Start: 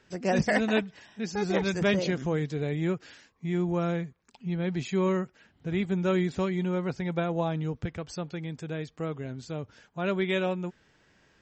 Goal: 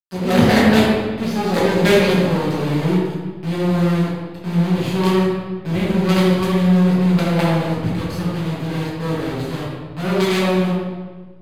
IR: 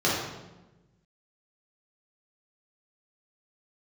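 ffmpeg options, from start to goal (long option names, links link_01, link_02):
-filter_complex "[0:a]acrusher=bits=4:dc=4:mix=0:aa=0.000001,aeval=exprs='0.282*(cos(1*acos(clip(val(0)/0.282,-1,1)))-cos(1*PI/2))+0.0708*(cos(5*acos(clip(val(0)/0.282,-1,1)))-cos(5*PI/2))+0.0282*(cos(8*acos(clip(val(0)/0.282,-1,1)))-cos(8*PI/2))':channel_layout=same[link_01];[1:a]atrim=start_sample=2205,asetrate=30429,aresample=44100[link_02];[link_01][link_02]afir=irnorm=-1:irlink=0,volume=-7.5dB"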